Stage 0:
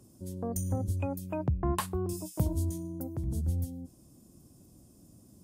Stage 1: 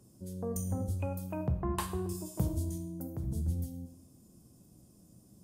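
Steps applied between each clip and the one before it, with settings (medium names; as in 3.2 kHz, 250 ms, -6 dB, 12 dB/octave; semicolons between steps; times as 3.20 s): two-slope reverb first 0.7 s, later 2.1 s, from -23 dB, DRR 6 dB; trim -3.5 dB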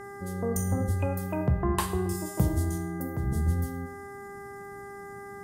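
mains buzz 400 Hz, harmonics 5, -49 dBFS -4 dB/octave; trim +6.5 dB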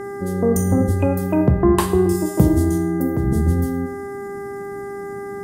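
peaking EQ 310 Hz +9.5 dB 1.6 oct; trim +6.5 dB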